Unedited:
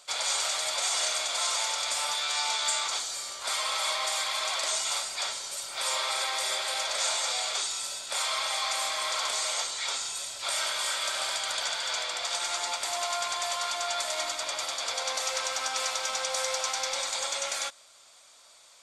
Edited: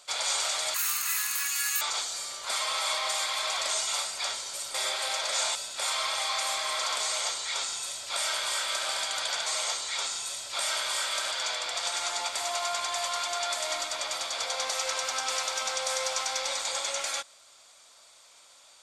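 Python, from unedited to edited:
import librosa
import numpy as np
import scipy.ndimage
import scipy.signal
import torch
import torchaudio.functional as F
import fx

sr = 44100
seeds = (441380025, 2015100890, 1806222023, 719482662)

y = fx.edit(x, sr, fx.speed_span(start_s=0.74, length_s=2.05, speed=1.91),
    fx.cut(start_s=5.72, length_s=0.68),
    fx.cut(start_s=7.21, length_s=0.67),
    fx.duplicate(start_s=9.36, length_s=1.85, to_s=11.79), tone=tone)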